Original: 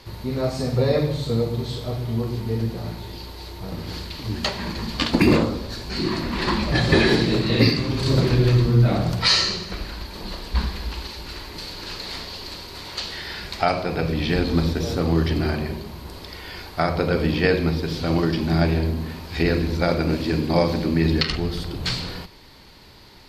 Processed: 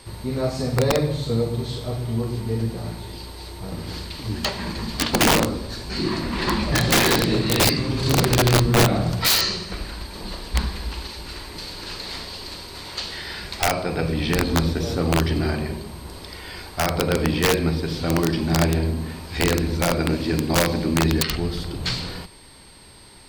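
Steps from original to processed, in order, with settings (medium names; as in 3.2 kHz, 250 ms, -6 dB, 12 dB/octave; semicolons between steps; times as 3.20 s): integer overflow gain 10.5 dB; whistle 8.5 kHz -51 dBFS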